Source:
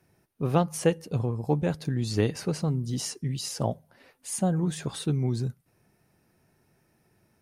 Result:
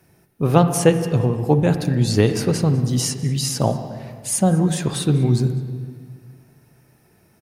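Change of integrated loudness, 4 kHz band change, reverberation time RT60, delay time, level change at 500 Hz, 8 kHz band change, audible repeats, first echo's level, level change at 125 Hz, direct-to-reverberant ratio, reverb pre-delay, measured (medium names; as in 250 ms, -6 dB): +9.5 dB, +9.5 dB, 1.8 s, 198 ms, +9.5 dB, +10.5 dB, 1, -20.5 dB, +10.0 dB, 8.0 dB, 38 ms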